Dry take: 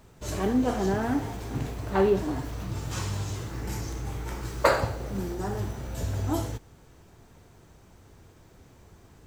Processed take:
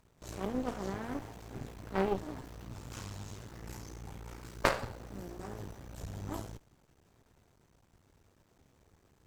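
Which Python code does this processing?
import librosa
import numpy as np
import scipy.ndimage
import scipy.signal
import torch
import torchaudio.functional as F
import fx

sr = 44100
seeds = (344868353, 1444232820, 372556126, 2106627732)

y = np.maximum(x, 0.0)
y = fx.cheby_harmonics(y, sr, harmonics=(3,), levels_db=(-13,), full_scale_db=-7.5)
y = y * 10.0 ** (1.5 / 20.0)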